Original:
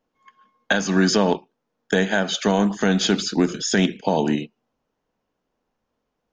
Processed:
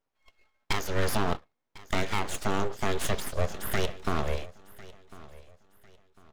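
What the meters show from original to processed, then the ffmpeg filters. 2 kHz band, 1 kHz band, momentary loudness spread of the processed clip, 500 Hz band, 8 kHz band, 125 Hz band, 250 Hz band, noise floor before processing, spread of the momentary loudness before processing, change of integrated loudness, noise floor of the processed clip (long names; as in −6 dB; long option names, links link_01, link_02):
−10.0 dB, −6.0 dB, 21 LU, −10.0 dB, −9.5 dB, −7.0 dB, −16.0 dB, −78 dBFS, 6 LU, −10.5 dB, −81 dBFS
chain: -af "aeval=exprs='abs(val(0))':channel_layout=same,aecho=1:1:1050|2100|3150:0.1|0.032|0.0102,volume=-6.5dB"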